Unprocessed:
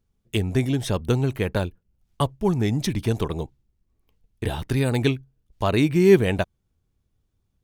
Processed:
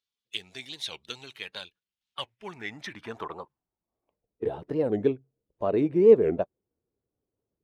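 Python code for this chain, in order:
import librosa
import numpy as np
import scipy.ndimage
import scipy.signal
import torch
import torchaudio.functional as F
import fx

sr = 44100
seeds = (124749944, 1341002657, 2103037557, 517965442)

y = fx.spec_quant(x, sr, step_db=15)
y = fx.filter_sweep_bandpass(y, sr, from_hz=3700.0, to_hz=460.0, start_s=1.81, end_s=4.46, q=2.0)
y = fx.record_warp(y, sr, rpm=45.0, depth_cents=250.0)
y = F.gain(torch.from_numpy(y), 2.5).numpy()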